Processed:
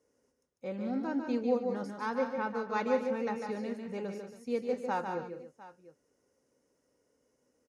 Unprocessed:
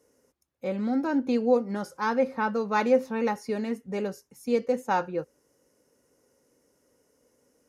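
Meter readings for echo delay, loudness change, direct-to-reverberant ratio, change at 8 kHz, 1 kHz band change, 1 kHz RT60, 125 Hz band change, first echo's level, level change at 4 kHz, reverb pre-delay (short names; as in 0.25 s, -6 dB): 0.148 s, -6.5 dB, none, n/a, -6.5 dB, none, -6.5 dB, -6.0 dB, -7.0 dB, none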